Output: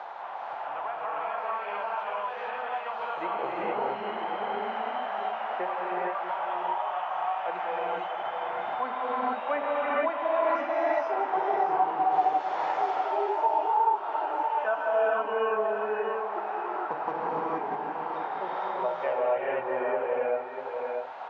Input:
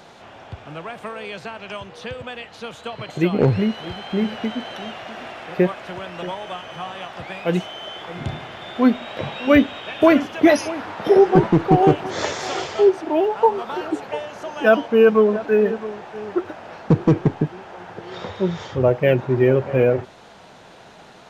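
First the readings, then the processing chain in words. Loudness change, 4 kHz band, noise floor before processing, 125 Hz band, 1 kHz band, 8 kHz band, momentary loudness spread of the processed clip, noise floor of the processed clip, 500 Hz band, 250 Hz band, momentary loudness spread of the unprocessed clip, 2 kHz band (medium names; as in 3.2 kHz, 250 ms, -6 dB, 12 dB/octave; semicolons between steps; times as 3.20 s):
-10.0 dB, -14.0 dB, -45 dBFS, under -30 dB, +1.0 dB, under -25 dB, 8 LU, -37 dBFS, -10.0 dB, -21.5 dB, 18 LU, -7.0 dB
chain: ladder band-pass 1 kHz, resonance 50%; on a send: delay 641 ms -11 dB; on the sum: gated-style reverb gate 500 ms rising, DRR -7.5 dB; three bands compressed up and down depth 70%; trim -1.5 dB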